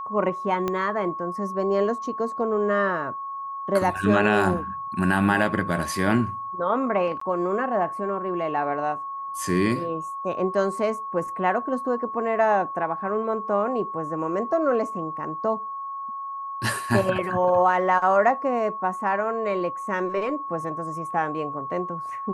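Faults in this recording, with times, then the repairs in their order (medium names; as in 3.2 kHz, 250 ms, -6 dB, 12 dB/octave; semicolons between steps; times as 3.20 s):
whine 1.1 kHz -30 dBFS
0.68 s: pop -13 dBFS
7.20–7.21 s: dropout 14 ms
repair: de-click; band-stop 1.1 kHz, Q 30; interpolate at 7.20 s, 14 ms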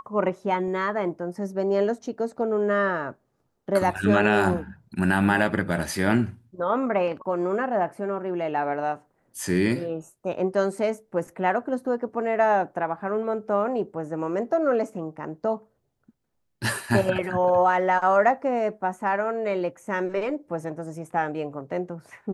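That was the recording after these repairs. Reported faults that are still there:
0.68 s: pop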